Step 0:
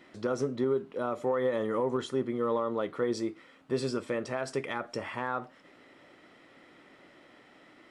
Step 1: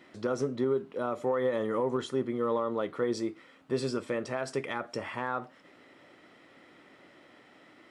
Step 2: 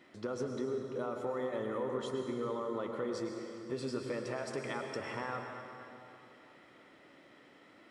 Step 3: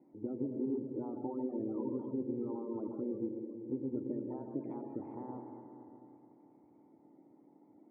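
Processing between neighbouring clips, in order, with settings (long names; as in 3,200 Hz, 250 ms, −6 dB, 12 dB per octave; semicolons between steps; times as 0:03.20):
high-pass filter 40 Hz
downward compressor, threshold −29 dBFS, peak gain reduction 5.5 dB; convolution reverb RT60 2.8 s, pre-delay 93 ms, DRR 3 dB; level −4.5 dB
spectral magnitudes quantised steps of 30 dB; formant resonators in series u; level +9 dB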